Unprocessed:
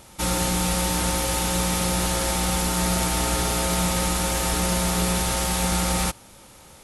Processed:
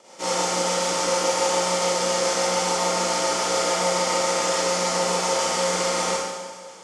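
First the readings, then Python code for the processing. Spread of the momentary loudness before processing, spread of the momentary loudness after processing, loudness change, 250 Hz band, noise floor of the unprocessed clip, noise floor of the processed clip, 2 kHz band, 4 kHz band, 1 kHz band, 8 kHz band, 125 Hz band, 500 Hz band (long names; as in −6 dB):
1 LU, 3 LU, +0.5 dB, −6.5 dB, −48 dBFS, −41 dBFS, +1.0 dB, +2.0 dB, +3.5 dB, 0.0 dB, −12.0 dB, +7.0 dB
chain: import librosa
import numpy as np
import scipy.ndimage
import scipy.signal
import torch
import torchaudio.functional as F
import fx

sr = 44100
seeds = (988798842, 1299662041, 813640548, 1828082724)

p1 = fx.tube_stage(x, sr, drive_db=24.0, bias=0.6)
p2 = fx.rotary(p1, sr, hz=7.0)
p3 = fx.cabinet(p2, sr, low_hz=470.0, low_slope=12, high_hz=7000.0, hz=(510.0, 1600.0, 2600.0, 3800.0), db=(4, -7, -6, -9))
p4 = p3 + fx.echo_feedback(p3, sr, ms=187, feedback_pct=58, wet_db=-17.0, dry=0)
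p5 = fx.rev_schroeder(p4, sr, rt60_s=1.2, comb_ms=33, drr_db=-6.5)
y = p5 * librosa.db_to_amplitude(6.0)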